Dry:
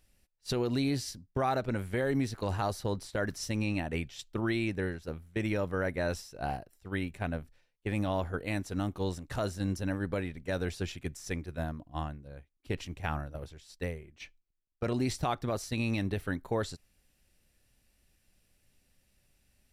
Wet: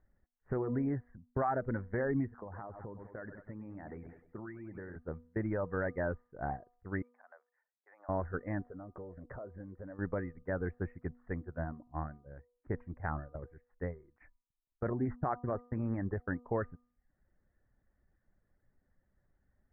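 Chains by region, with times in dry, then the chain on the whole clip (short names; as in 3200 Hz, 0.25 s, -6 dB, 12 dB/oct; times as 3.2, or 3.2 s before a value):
2.28–4.96 low shelf 75 Hz -9.5 dB + feedback echo 98 ms, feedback 46%, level -11.5 dB + compressor 12:1, threshold -37 dBFS
7.02–8.09 auto swell 0.131 s + HPF 640 Hz 24 dB/oct + compressor 3:1, threshold -53 dBFS
8.64–9.99 bell 550 Hz +10 dB 0.95 oct + notch 840 Hz, Q 13 + compressor, threshold -40 dBFS
14.9–16.46 median filter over 9 samples + gate -42 dBFS, range -19 dB
whole clip: steep low-pass 1900 Hz 72 dB/oct; reverb removal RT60 0.51 s; de-hum 243.2 Hz, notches 5; gain -2 dB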